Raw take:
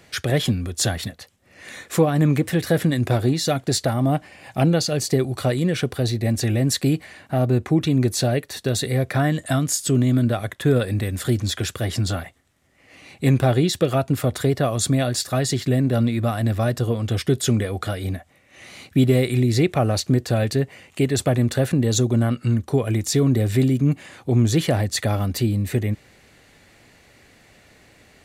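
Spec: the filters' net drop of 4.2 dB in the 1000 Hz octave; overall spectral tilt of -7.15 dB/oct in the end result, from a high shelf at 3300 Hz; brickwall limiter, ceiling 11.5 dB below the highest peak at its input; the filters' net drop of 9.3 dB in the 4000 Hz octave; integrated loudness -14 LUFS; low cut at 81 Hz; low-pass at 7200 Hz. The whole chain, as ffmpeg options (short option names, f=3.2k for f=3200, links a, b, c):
-af "highpass=81,lowpass=7.2k,equalizer=f=1k:t=o:g=-6,highshelf=f=3.3k:g=-5,equalizer=f=4k:t=o:g=-7,volume=14dB,alimiter=limit=-4dB:level=0:latency=1"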